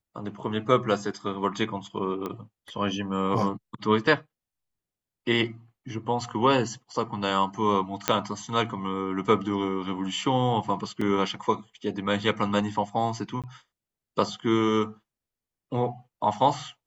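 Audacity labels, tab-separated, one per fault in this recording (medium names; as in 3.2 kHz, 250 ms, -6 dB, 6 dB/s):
2.260000	2.260000	pop -19 dBFS
8.080000	8.080000	pop -4 dBFS
11.010000	11.010000	dropout 4.5 ms
13.420000	13.440000	dropout 17 ms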